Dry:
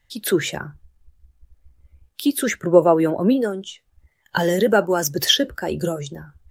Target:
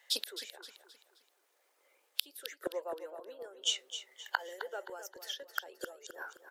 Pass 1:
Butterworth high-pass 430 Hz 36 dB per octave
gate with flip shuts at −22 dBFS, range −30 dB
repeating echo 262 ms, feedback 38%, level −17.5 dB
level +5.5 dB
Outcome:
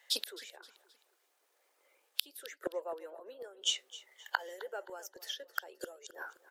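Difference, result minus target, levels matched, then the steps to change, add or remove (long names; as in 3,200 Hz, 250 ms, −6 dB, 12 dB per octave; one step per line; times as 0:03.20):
echo-to-direct −7 dB
change: repeating echo 262 ms, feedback 38%, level −10.5 dB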